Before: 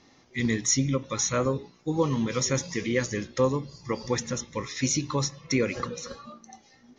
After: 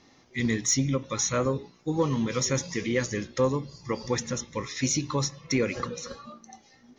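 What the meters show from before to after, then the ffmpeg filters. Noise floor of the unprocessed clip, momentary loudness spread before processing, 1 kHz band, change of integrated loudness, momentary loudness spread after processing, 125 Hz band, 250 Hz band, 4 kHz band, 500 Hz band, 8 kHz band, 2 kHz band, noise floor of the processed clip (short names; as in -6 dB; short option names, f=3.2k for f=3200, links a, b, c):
-59 dBFS, 9 LU, -0.5 dB, -0.5 dB, 9 LU, -0.5 dB, -0.5 dB, -0.5 dB, -0.5 dB, -0.5 dB, -0.5 dB, -59 dBFS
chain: -af "asoftclip=type=tanh:threshold=-11.5dB"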